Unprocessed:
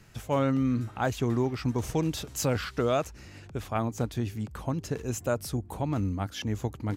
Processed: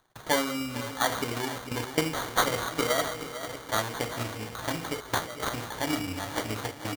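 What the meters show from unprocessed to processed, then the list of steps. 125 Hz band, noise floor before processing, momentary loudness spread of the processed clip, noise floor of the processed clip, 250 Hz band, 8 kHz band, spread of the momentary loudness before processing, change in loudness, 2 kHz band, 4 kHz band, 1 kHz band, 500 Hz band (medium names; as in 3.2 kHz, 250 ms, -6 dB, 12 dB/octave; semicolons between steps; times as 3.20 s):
-8.0 dB, -48 dBFS, 7 LU, -44 dBFS, -4.0 dB, +4.5 dB, 7 LU, 0.0 dB, +8.5 dB, +8.5 dB, +4.0 dB, -1.0 dB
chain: backward echo that repeats 601 ms, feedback 64%, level -13.5 dB; treble shelf 3.5 kHz +10.5 dB; gate -41 dBFS, range -56 dB; hum notches 50/100/150/200/250 Hz; in parallel at -3 dB: peak limiter -25.5 dBFS, peak gain reduction 15 dB; on the sum: FDN reverb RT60 0.49 s, low-frequency decay 0.75×, high-frequency decay 1×, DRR 1 dB; trance gate "x.xxxxxxxxxx." 114 bpm -12 dB; on a send: feedback delay 451 ms, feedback 41%, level -11 dB; on the sum: sample-and-hold 17×; transient shaper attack +8 dB, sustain +3 dB; bass shelf 400 Hz -11 dB; upward compressor, threshold -35 dBFS; trim -4.5 dB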